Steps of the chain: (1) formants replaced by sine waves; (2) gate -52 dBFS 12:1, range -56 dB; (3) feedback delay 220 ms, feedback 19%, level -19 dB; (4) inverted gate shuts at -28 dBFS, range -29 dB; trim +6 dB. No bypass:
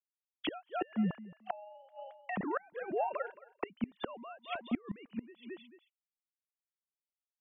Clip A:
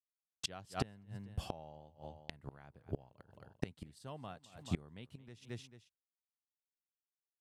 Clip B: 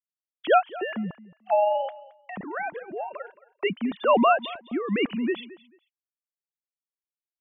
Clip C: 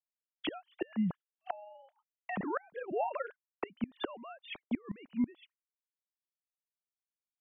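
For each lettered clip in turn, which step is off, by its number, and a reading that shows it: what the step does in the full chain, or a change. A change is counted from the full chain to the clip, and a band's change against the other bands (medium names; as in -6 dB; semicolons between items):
1, 125 Hz band +12.0 dB; 4, momentary loudness spread change +3 LU; 3, momentary loudness spread change -3 LU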